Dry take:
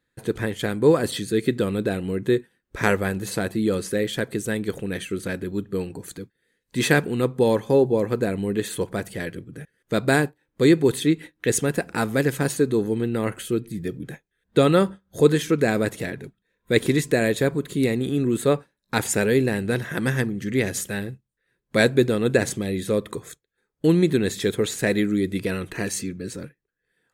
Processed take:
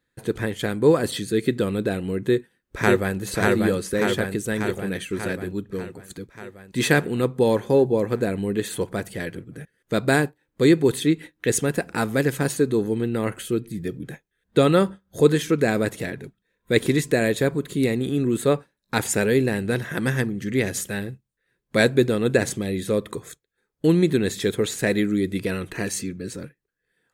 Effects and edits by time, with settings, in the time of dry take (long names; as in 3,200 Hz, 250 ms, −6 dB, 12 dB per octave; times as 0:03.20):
0:02.24–0:03.17: delay throw 590 ms, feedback 65%, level −1.5 dB
0:05.36–0:06.10: fade out, to −8 dB